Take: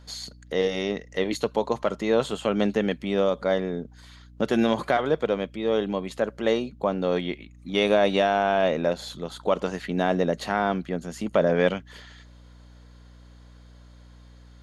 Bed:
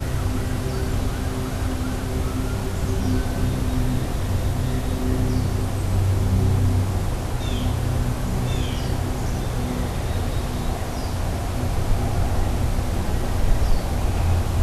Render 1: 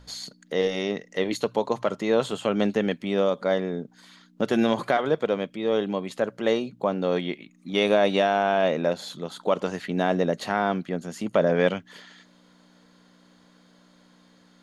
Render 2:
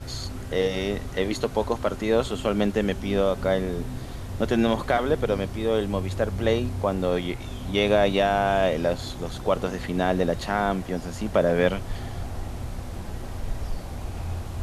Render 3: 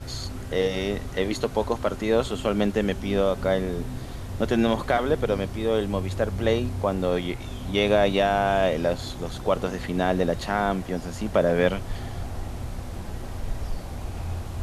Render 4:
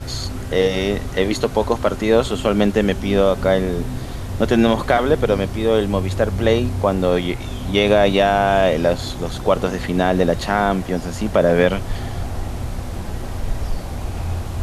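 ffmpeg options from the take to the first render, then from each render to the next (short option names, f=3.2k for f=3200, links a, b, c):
-af "bandreject=f=60:t=h:w=4,bandreject=f=120:t=h:w=4"
-filter_complex "[1:a]volume=-11dB[a];[0:a][a]amix=inputs=2:normalize=0"
-af anull
-af "volume=7dB,alimiter=limit=-3dB:level=0:latency=1"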